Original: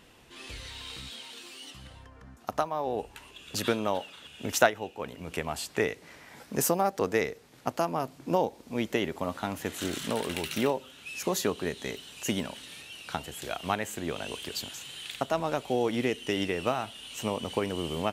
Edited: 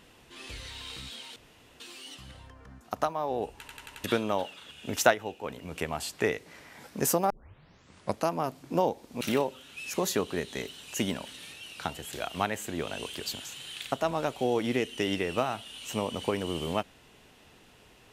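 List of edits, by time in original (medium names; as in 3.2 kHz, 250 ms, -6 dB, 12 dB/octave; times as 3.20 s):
1.36 s: insert room tone 0.44 s
3.15 s: stutter in place 0.09 s, 5 plays
6.86 s: tape start 0.99 s
8.77–10.50 s: delete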